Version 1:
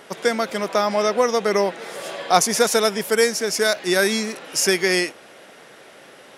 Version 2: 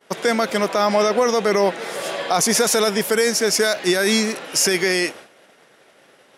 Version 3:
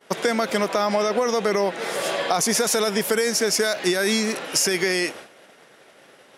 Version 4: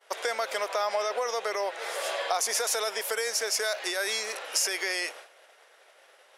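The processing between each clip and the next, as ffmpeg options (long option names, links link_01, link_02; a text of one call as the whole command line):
ffmpeg -i in.wav -af "agate=range=-33dB:threshold=-36dB:ratio=3:detection=peak,alimiter=limit=-12.5dB:level=0:latency=1:release=13,volume=5dB" out.wav
ffmpeg -i in.wav -af "acompressor=threshold=-19dB:ratio=6,volume=1.5dB" out.wav
ffmpeg -i in.wav -af "highpass=frequency=500:width=0.5412,highpass=frequency=500:width=1.3066,volume=-5.5dB" out.wav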